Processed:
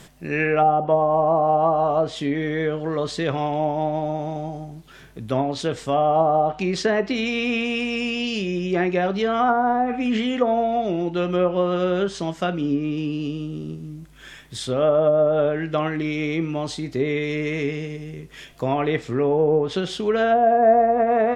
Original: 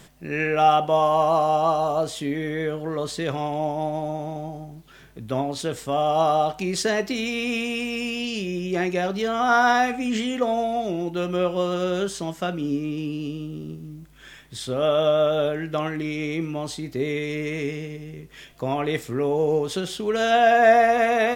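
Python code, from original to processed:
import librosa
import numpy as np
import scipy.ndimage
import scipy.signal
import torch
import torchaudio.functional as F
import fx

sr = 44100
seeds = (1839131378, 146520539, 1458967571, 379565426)

y = fx.env_lowpass_down(x, sr, base_hz=680.0, full_db=-15.0)
y = F.gain(torch.from_numpy(y), 3.0).numpy()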